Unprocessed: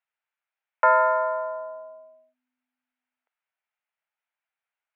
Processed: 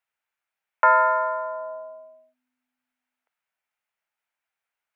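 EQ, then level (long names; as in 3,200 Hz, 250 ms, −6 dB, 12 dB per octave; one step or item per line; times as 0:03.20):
dynamic equaliser 550 Hz, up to −6 dB, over −35 dBFS, Q 1.7
+3.0 dB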